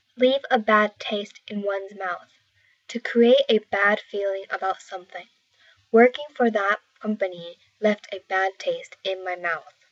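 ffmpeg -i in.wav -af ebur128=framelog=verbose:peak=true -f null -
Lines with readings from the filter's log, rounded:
Integrated loudness:
  I:         -23.3 LUFS
  Threshold: -34.1 LUFS
Loudness range:
  LRA:         3.3 LU
  Threshold: -43.8 LUFS
  LRA low:   -26.0 LUFS
  LRA high:  -22.7 LUFS
True peak:
  Peak:       -4.5 dBFS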